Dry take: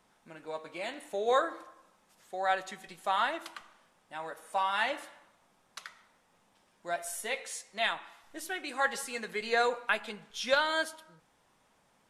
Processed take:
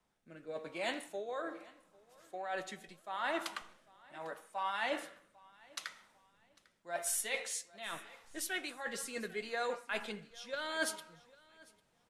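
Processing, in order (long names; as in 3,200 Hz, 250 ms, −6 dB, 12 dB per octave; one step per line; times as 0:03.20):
reversed playback
downward compressor 12 to 1, threshold −36 dBFS, peak gain reduction 16 dB
reversed playback
rotating-speaker cabinet horn 0.8 Hz
repeating echo 799 ms, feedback 40%, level −18 dB
multiband upward and downward expander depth 40%
level +3.5 dB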